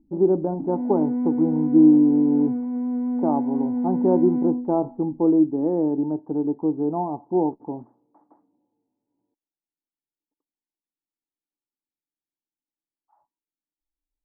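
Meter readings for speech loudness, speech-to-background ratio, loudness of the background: −22.0 LKFS, 3.5 dB, −25.5 LKFS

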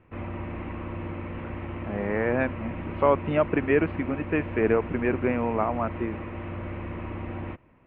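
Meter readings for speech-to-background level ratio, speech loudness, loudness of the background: 9.0 dB, −26.5 LKFS, −35.5 LKFS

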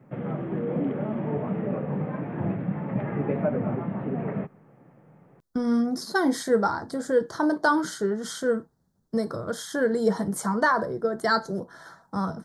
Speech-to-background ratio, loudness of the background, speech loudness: 3.5 dB, −29.5 LKFS, −26.0 LKFS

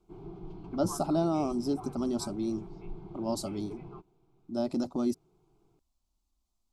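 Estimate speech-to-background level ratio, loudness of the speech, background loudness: 13.0 dB, −32.5 LKFS, −45.5 LKFS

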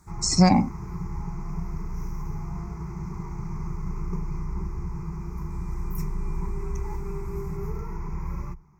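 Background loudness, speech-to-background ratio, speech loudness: −34.5 LKFS, 13.5 dB, −21.0 LKFS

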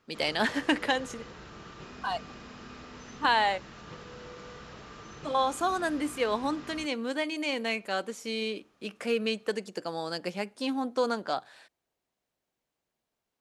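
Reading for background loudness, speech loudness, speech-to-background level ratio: −46.0 LKFS, −30.5 LKFS, 15.5 dB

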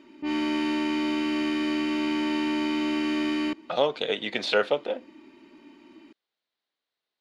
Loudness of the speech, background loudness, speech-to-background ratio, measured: −27.0 LKFS, −27.0 LKFS, 0.0 dB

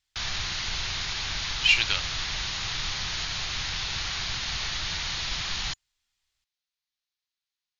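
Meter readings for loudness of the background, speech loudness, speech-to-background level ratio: −29.5 LKFS, −23.0 LKFS, 6.5 dB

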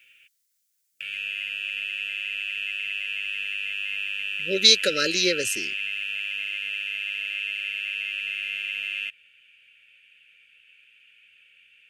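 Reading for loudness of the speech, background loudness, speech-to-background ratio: −20.5 LKFS, −28.0 LKFS, 7.5 dB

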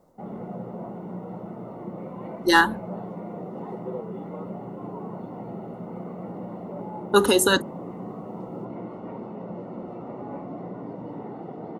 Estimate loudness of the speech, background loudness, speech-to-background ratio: −20.5 LKFS, −36.5 LKFS, 16.0 dB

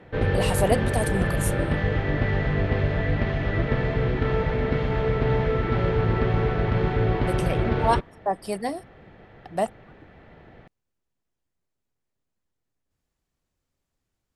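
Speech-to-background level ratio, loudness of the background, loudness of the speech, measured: −4.5 dB, −24.5 LKFS, −29.0 LKFS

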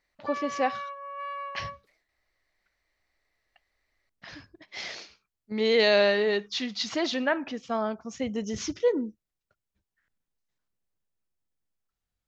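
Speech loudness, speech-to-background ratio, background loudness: −27.5 LKFS, 9.5 dB, −37.0 LKFS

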